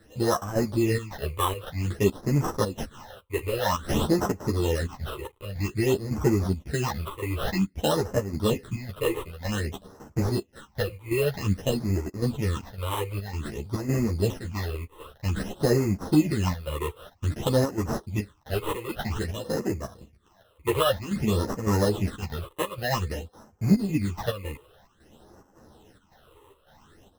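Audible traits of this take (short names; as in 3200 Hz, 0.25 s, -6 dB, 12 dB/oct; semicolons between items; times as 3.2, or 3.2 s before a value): aliases and images of a low sample rate 2300 Hz, jitter 0%; phasing stages 8, 0.52 Hz, lowest notch 200–3600 Hz; chopped level 1.8 Hz, depth 65%, duty 75%; a shimmering, thickened sound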